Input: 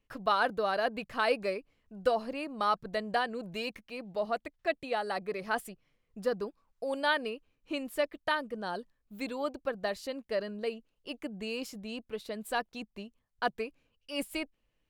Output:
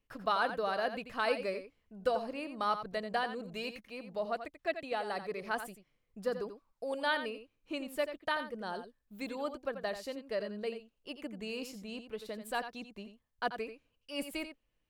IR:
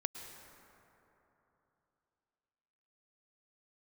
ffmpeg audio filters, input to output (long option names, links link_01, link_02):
-filter_complex "[0:a]asplit=2[link_01][link_02];[1:a]atrim=start_sample=2205,atrim=end_sample=3969,adelay=87[link_03];[link_02][link_03]afir=irnorm=-1:irlink=0,volume=-9dB[link_04];[link_01][link_04]amix=inputs=2:normalize=0,volume=-3.5dB"